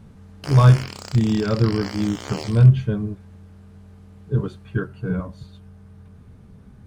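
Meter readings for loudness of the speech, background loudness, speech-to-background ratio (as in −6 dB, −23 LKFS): −20.0 LKFS, −35.0 LKFS, 15.0 dB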